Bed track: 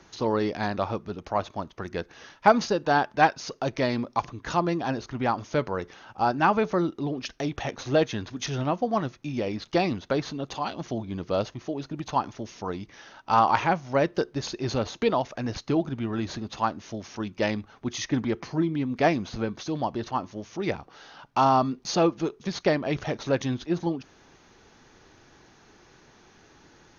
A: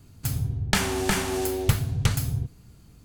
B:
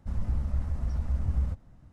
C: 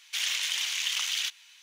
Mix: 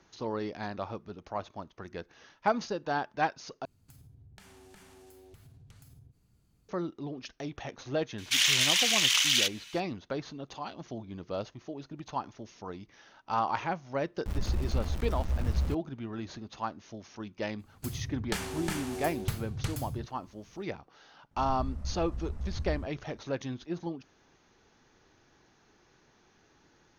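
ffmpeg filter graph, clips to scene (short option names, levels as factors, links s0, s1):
-filter_complex "[1:a]asplit=2[s0][s1];[2:a]asplit=2[s2][s3];[0:a]volume=0.355[s4];[s0]acompressor=threshold=0.0178:ratio=6:attack=3.2:release=140:knee=1:detection=peak[s5];[3:a]acontrast=37[s6];[s2]aeval=exprs='val(0)*gte(abs(val(0)),0.0188)':c=same[s7];[s4]asplit=2[s8][s9];[s8]atrim=end=3.654[s10];[s5]atrim=end=3.04,asetpts=PTS-STARTPTS,volume=0.141[s11];[s9]atrim=start=6.686[s12];[s6]atrim=end=1.62,asetpts=PTS-STARTPTS,volume=0.944,afade=t=in:d=0.004:c=hsin,afade=t=out:st=1.616:d=0.004:c=hsin,adelay=360738S[s13];[s7]atrim=end=1.92,asetpts=PTS-STARTPTS,volume=0.841,afade=t=in:d=0.004:c=hsin,afade=t=out:st=1.916:d=0.004:c=hsin,adelay=14200[s14];[s1]atrim=end=3.04,asetpts=PTS-STARTPTS,volume=0.282,afade=t=in:d=0.004:c=hsin,afade=t=out:st=3.036:d=0.004:c=hsin,adelay=17590[s15];[s3]atrim=end=1.92,asetpts=PTS-STARTPTS,volume=0.422,afade=t=in:d=0.004:c=hsin,afade=t=out:st=1.916:d=0.004:c=hsin,adelay=21310[s16];[s10][s11]acrossfade=d=0.004:c1=hsin:c2=hsin[s17];[s17][s12]acrossfade=d=0.004:c1=hsin:c2=hsin[s18];[s18][s13][s14][s15][s16]amix=inputs=5:normalize=0"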